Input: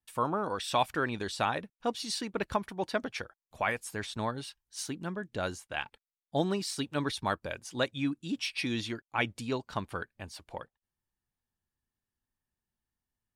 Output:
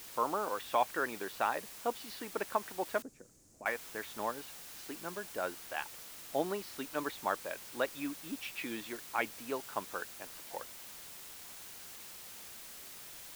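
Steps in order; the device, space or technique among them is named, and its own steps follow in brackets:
wax cylinder (band-pass filter 370–2,100 Hz; tape wow and flutter; white noise bed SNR 10 dB)
0:03.02–0:03.66: drawn EQ curve 280 Hz 0 dB, 870 Hz −20 dB, 3,400 Hz −27 dB, 7,000 Hz −8 dB, 14,000 Hz −24 dB
level −1.5 dB

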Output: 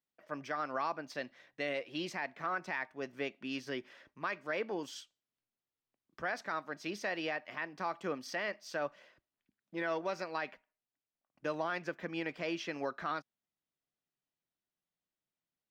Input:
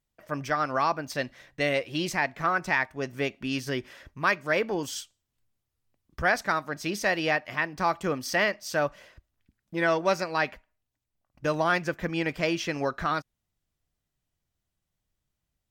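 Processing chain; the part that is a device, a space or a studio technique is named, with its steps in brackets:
DJ mixer with the lows and highs turned down (three-way crossover with the lows and the highs turned down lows −23 dB, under 170 Hz, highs −12 dB, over 5,500 Hz; brickwall limiter −17 dBFS, peak gain reduction 7 dB)
level −8 dB

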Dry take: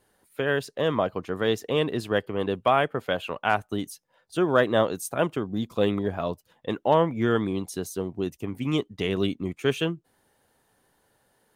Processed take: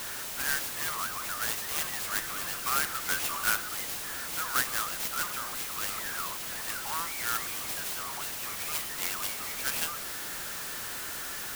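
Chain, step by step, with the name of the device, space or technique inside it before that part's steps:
Chebyshev high-pass filter 1,300 Hz, order 4
early CD player with a faulty converter (converter with a step at zero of −28.5 dBFS; converter with an unsteady clock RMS 0.093 ms)
0:03.04–0:03.50: double-tracking delay 13 ms −4 dB
level −2 dB

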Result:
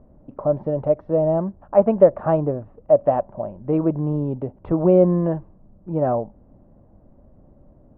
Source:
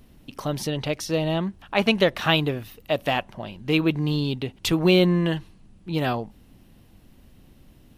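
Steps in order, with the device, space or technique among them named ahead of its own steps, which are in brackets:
0:02.07–0:02.99: high-shelf EQ 4,000 Hz −10 dB
under water (low-pass filter 1,100 Hz 24 dB per octave; parametric band 590 Hz +11.5 dB 0.37 octaves)
level +1 dB

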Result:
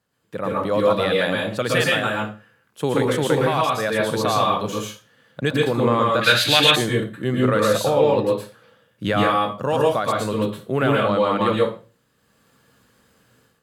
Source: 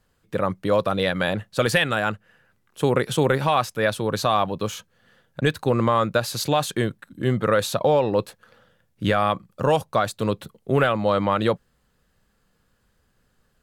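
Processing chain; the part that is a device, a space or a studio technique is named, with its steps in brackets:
far laptop microphone (convolution reverb RT60 0.35 s, pre-delay 109 ms, DRR −2.5 dB; high-pass filter 110 Hz; automatic gain control gain up to 12 dB)
0:06.21–0:06.76: flat-topped bell 2,400 Hz +15 dB
level −5.5 dB

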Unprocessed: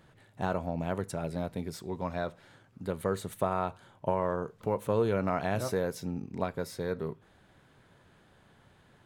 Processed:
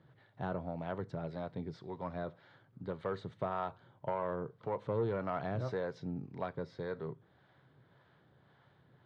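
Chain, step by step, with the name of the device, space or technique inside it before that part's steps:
guitar amplifier with harmonic tremolo (two-band tremolo in antiphase 1.8 Hz, depth 50%, crossover 510 Hz; soft clipping −22.5 dBFS, distortion −18 dB; loudspeaker in its box 93–4,100 Hz, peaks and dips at 130 Hz +7 dB, 220 Hz −4 dB, 2,600 Hz −8 dB)
level −2.5 dB

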